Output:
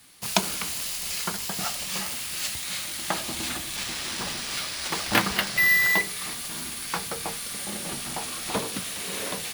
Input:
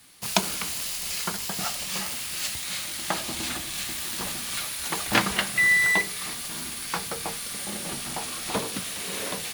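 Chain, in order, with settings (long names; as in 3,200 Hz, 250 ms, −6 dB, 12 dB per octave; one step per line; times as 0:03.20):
0:03.76–0:05.99: bad sample-rate conversion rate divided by 3×, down none, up hold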